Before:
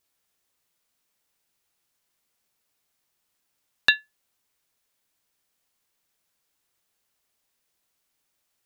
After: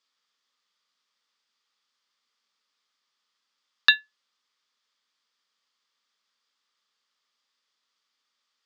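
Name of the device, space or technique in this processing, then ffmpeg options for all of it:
television speaker: -af "highpass=f=220:w=0.5412,highpass=f=220:w=1.3066,equalizer=f=340:t=q:w=4:g=-10,equalizer=f=690:t=q:w=4:g=-8,equalizer=f=1.2k:t=q:w=4:g=10,equalizer=f=1.9k:t=q:w=4:g=4,equalizer=f=3.4k:t=q:w=4:g=8,equalizer=f=4.8k:t=q:w=4:g=8,lowpass=f=6.7k:w=0.5412,lowpass=f=6.7k:w=1.3066,volume=-3dB"

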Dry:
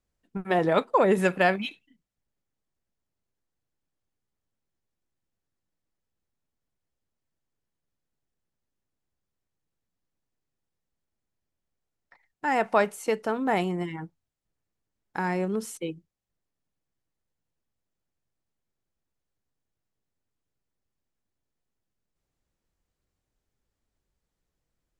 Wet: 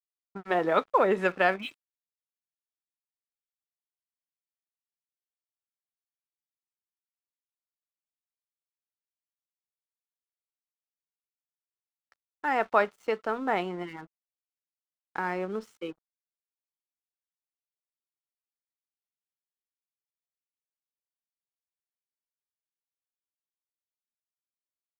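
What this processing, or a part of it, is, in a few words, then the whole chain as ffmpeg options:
pocket radio on a weak battery: -af "highpass=260,lowpass=4.3k,aeval=exprs='sgn(val(0))*max(abs(val(0))-0.00299,0)':c=same,equalizer=f=1.3k:t=o:w=0.41:g=5.5,volume=-2dB"

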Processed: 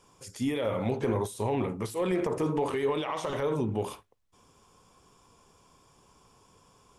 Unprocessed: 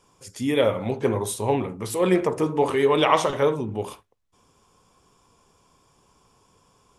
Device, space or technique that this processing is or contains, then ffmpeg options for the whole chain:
de-esser from a sidechain: -filter_complex "[0:a]asplit=2[a][b];[b]highpass=f=4.6k:p=1,apad=whole_len=308036[c];[a][c]sidechaincompress=threshold=-42dB:ratio=5:attack=1.9:release=46"

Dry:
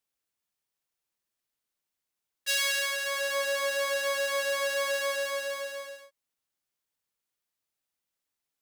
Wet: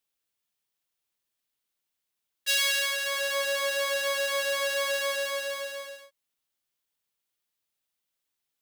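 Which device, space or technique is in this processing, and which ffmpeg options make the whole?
presence and air boost: -af "equalizer=f=3.3k:t=o:w=0.86:g=4,highshelf=f=11k:g=4.5"

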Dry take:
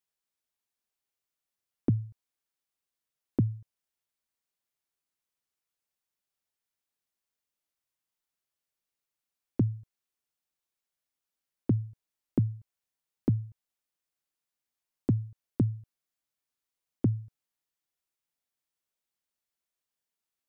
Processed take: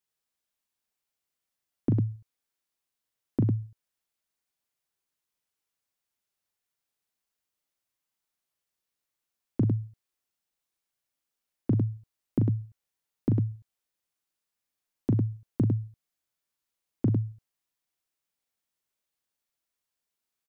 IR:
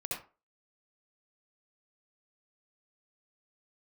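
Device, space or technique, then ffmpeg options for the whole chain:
slapback doubling: -filter_complex "[0:a]asplit=3[a][b][c];[b]adelay=38,volume=-5dB[d];[c]adelay=102,volume=-4dB[e];[a][d][e]amix=inputs=3:normalize=0"

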